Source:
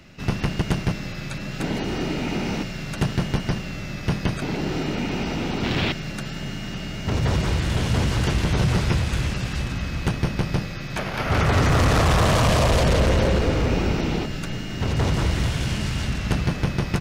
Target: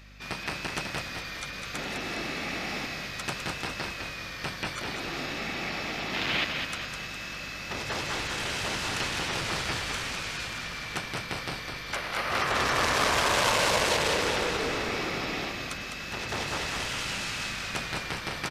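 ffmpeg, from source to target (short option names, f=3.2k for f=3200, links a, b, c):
-filter_complex "[0:a]highpass=f=1.3k:p=1,asplit=7[a][b][c][d][e][f][g];[b]adelay=188,afreqshift=-47,volume=-5dB[h];[c]adelay=376,afreqshift=-94,volume=-11dB[i];[d]adelay=564,afreqshift=-141,volume=-17dB[j];[e]adelay=752,afreqshift=-188,volume=-23.1dB[k];[f]adelay=940,afreqshift=-235,volume=-29.1dB[l];[g]adelay=1128,afreqshift=-282,volume=-35.1dB[m];[a][h][i][j][k][l][m]amix=inputs=7:normalize=0,asetrate=40517,aresample=44100,aeval=exprs='0.237*(cos(1*acos(clip(val(0)/0.237,-1,1)))-cos(1*PI/2))+0.00188*(cos(7*acos(clip(val(0)/0.237,-1,1)))-cos(7*PI/2))':c=same,aeval=exprs='val(0)+0.00316*(sin(2*PI*50*n/s)+sin(2*PI*2*50*n/s)/2+sin(2*PI*3*50*n/s)/3+sin(2*PI*4*50*n/s)/4+sin(2*PI*5*50*n/s)/5)':c=same"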